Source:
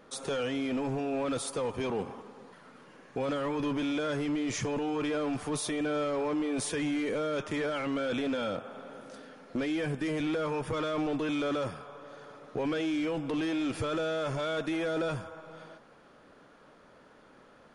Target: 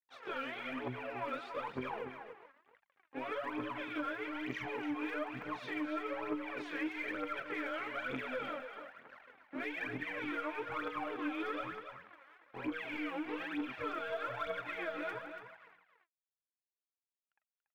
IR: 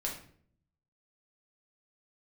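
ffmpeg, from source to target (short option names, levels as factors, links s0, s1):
-filter_complex "[0:a]afftfilt=real='re':imag='-im':win_size=2048:overlap=0.75,acrossover=split=380[s0][s1];[s0]acontrast=58[s2];[s2][s1]amix=inputs=2:normalize=0,aeval=exprs='sgn(val(0))*max(abs(val(0))-0.00398,0)':c=same,lowpass=f=2100:w=0.5412,lowpass=f=2100:w=1.3066,aderivative,bandreject=f=50:t=h:w=6,bandreject=f=100:t=h:w=6,bandreject=f=150:t=h:w=6,bandreject=f=200:t=h:w=6,aeval=exprs='0.00708*(cos(1*acos(clip(val(0)/0.00708,-1,1)))-cos(1*PI/2))+0.000562*(cos(4*acos(clip(val(0)/0.00708,-1,1)))-cos(4*PI/2))+0.000126*(cos(5*acos(clip(val(0)/0.00708,-1,1)))-cos(5*PI/2))+0.000251*(cos(6*acos(clip(val(0)/0.00708,-1,1)))-cos(6*PI/2))':c=same,aphaser=in_gain=1:out_gain=1:delay=3.8:decay=0.77:speed=1.1:type=triangular,acompressor=threshold=0.00282:ratio=4,asplit=2[s3][s4];[s4]aecho=0:1:285:0.355[s5];[s3][s5]amix=inputs=2:normalize=0,volume=5.96"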